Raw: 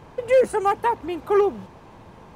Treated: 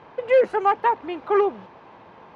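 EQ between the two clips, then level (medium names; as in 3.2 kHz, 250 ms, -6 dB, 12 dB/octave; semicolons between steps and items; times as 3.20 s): high-pass 620 Hz 6 dB/octave; distance through air 250 m; +4.5 dB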